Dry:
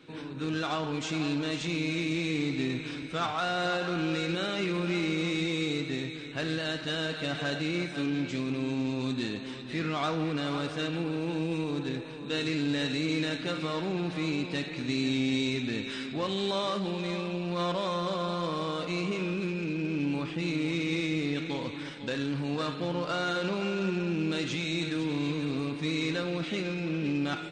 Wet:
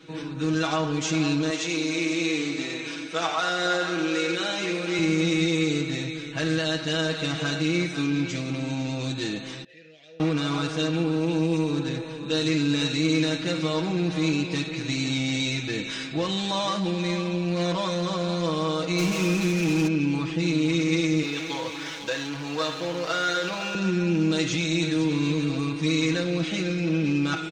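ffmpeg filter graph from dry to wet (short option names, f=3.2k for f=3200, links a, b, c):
-filter_complex "[0:a]asettb=1/sr,asplit=3[a][b][c];[a]atrim=end=1.504[d];[b]atrim=start=1.5:end=4.99,asetpts=PTS-STARTPTS,afade=t=in:d=0.004:c=qsin,afade=t=out:st=3.486:d=0.004:c=qsin,highpass=320,aecho=1:1:90:0.422,atrim=end_sample=153909[e];[c]atrim=start=4.986[f];[d][e]acrossfade=d=0.004:c1=hsin:c2=qsin[g];[g][f]acrossfade=d=0.004:c1=qsin:c2=hsin,asettb=1/sr,asplit=3[h][i][j];[h]atrim=end=9.644[k];[i]atrim=start=9.64:end=10.2,asetpts=PTS-STARTPTS,afade=t=in:d=0.004:c=qsin,afade=t=out:st=0.556:d=0.004:c=qsin,acrossover=split=150|3000[l][m][n];[m]acompressor=threshold=-46dB:ratio=4:attack=3.2:release=140:knee=2.83:detection=peak[o];[l][o][n]amix=inputs=3:normalize=0,asplit=3[p][q][r];[p]bandpass=f=530:t=q:w=8,volume=0dB[s];[q]bandpass=f=1.84k:t=q:w=8,volume=-6dB[t];[r]bandpass=f=2.48k:t=q:w=8,volume=-9dB[u];[s][t][u]amix=inputs=3:normalize=0[v];[j]atrim=start=10.196[w];[k][v]acrossfade=d=0.004:c1=hsin:c2=qsin[x];[x][w]acrossfade=d=0.004:c1=qsin:c2=hsin,asettb=1/sr,asplit=3[y][z][aa];[y]atrim=end=18.984[ab];[z]atrim=start=18.98:end=19.88,asetpts=PTS-STARTPTS,afade=t=in:d=0.004:c=qsin,afade=t=out:st=0.896:d=0.004:c=qsin,aeval=exprs='val(0)+0.5*0.0158*sgn(val(0))':c=same,acrusher=bits=5:mix=0:aa=0.5[ac];[aa]atrim=start=19.876[ad];[ab][ac]acrossfade=d=0.004:c1=hsin:c2=qsin[ae];[ae][ad]acrossfade=d=0.004:c1=qsin:c2=hsin,asettb=1/sr,asplit=3[af][ag][ah];[af]atrim=end=21.234[ai];[ag]atrim=start=21.23:end=23.75,asetpts=PTS-STARTPTS,afade=t=in:d=0.004:c=qsin,afade=t=out:st=2.516:d=0.004:c=qsin,aeval=exprs='val(0)+0.5*0.01*sgn(val(0))':c=same,acrossover=split=390 7800:gain=0.251 1 0.224[aj][ak][al];[aj][ak][al]amix=inputs=3:normalize=0[am];[ah]atrim=start=23.746[an];[ai][am]acrossfade=d=0.004:c1=hsin:c2=qsin[ao];[ao][an]acrossfade=d=0.004:c1=qsin:c2=hsin,equalizer=f=6.2k:w=2.4:g=7.5,aecho=1:1:6.2:0.9,volume=2dB"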